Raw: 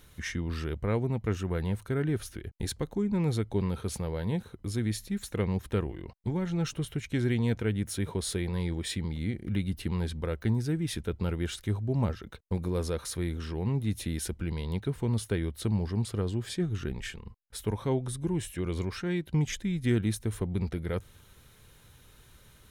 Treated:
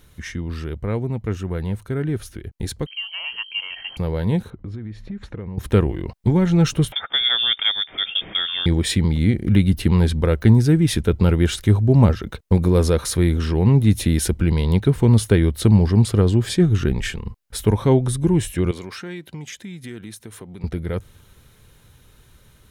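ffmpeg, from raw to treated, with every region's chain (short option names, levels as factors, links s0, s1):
-filter_complex "[0:a]asettb=1/sr,asplit=3[s0][s1][s2];[s0]atrim=end=2.864[s3];[s1]atrim=start=2.86:end=3.97,asetpts=PTS-STARTPTS,afade=t=in:d=0.004:c=qsin,afade=t=out:st=1.106:d=0.004:c=qsin,highpass=f=310:w=0.5412,highpass=f=310:w=1.3066,aeval=exprs='val(0)+0.00501*(sin(2*PI*50*n/s)+sin(2*PI*2*50*n/s)/2+sin(2*PI*3*50*n/s)/3+sin(2*PI*4*50*n/s)/4+sin(2*PI*5*50*n/s)/5)':c=same,lowpass=f=2700:t=q:w=0.5098,lowpass=f=2700:t=q:w=0.6013,lowpass=f=2700:t=q:w=0.9,lowpass=f=2700:t=q:w=2.563,afreqshift=-3200[s4];[s2]atrim=start=3.966[s5];[s3][s4]acrossfade=d=0.004:c1=hsin:c2=qsin[s6];[s6][s5]acrossfade=d=0.004:c1=qsin:c2=hsin,asettb=1/sr,asplit=3[s7][s8][s9];[s7]atrim=end=4.504[s10];[s8]atrim=start=4.5:end=5.58,asetpts=PTS-STARTPTS,afade=t=in:d=0.004:c=qsin,afade=t=out:st=1.076:d=0.004:c=qsin,lowpass=2000,acompressor=threshold=0.0112:ratio=16:attack=3.2:release=140:knee=1:detection=peak[s11];[s9]atrim=start=5.576[s12];[s10][s11]acrossfade=d=0.004:c1=hsin:c2=qsin[s13];[s13][s12]acrossfade=d=0.004:c1=qsin:c2=hsin,asettb=1/sr,asplit=3[s14][s15][s16];[s14]atrim=end=6.924[s17];[s15]atrim=start=6.92:end=8.66,asetpts=PTS-STARTPTS,afade=t=in:d=0.004:c=qsin,afade=t=out:st=1.736:d=0.004:c=qsin,highpass=240,lowpass=f=3100:t=q:w=0.5098,lowpass=f=3100:t=q:w=0.6013,lowpass=f=3100:t=q:w=0.9,lowpass=f=3100:t=q:w=2.563,afreqshift=-3700[s18];[s16]atrim=start=8.656[s19];[s17][s18]acrossfade=d=0.004:c1=hsin:c2=qsin[s20];[s20][s19]acrossfade=d=0.004:c1=qsin:c2=hsin,asettb=1/sr,asplit=3[s21][s22][s23];[s21]atrim=end=18.714[s24];[s22]atrim=start=18.71:end=20.64,asetpts=PTS-STARTPTS,afade=t=in:d=0.004:c=qsin,afade=t=out:st=1.926:d=0.004:c=qsin,lowshelf=f=440:g=-9.5,acompressor=threshold=0.01:ratio=4:attack=3.2:release=140:knee=1:detection=peak,highpass=130[s25];[s23]atrim=start=20.636[s26];[s24][s25]acrossfade=d=0.004:c1=hsin:c2=qsin[s27];[s27][s26]acrossfade=d=0.004:c1=qsin:c2=hsin,lowshelf=f=470:g=3.5,dynaudnorm=f=540:g=17:m=3.55,volume=1.26"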